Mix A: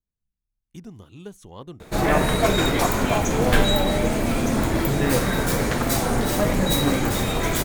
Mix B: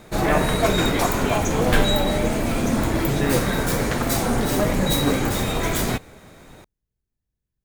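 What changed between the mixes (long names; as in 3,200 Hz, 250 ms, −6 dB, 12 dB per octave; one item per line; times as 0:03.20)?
speech +7.5 dB
background: entry −1.80 s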